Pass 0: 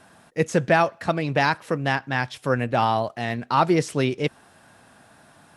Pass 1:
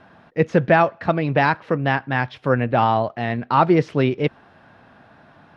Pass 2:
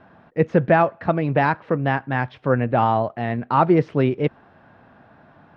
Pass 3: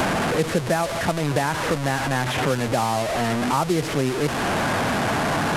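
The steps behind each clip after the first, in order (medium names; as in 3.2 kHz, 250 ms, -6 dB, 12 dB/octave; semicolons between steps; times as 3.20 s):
distance through air 280 m; trim +4.5 dB
low-pass 1.7 kHz 6 dB/octave
one-bit delta coder 64 kbps, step -17 dBFS; three bands compressed up and down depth 100%; trim -4.5 dB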